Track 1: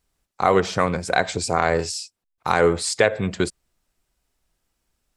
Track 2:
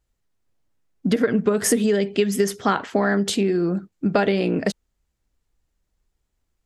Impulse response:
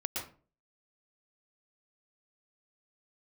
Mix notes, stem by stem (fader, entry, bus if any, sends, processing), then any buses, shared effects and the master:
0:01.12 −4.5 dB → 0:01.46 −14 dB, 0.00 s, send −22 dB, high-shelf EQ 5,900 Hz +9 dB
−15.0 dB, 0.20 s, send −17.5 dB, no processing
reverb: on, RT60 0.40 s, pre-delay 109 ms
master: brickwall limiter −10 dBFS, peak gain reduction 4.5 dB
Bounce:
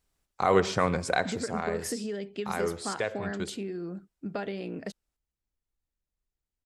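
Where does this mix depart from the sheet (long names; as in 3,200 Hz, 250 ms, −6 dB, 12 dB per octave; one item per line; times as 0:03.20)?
stem 1: missing high-shelf EQ 5,900 Hz +9 dB
stem 2: send off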